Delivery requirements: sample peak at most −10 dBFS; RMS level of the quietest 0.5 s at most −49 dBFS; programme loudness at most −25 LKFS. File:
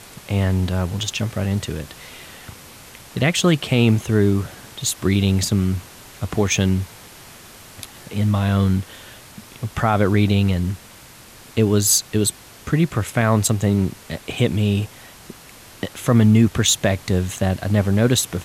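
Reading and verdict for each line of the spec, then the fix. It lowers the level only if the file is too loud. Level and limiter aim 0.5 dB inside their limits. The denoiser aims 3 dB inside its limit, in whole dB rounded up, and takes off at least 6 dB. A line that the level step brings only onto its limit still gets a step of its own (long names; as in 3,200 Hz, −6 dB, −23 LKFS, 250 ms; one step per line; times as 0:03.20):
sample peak −4.5 dBFS: out of spec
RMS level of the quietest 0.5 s −44 dBFS: out of spec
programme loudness −19.5 LKFS: out of spec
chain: level −6 dB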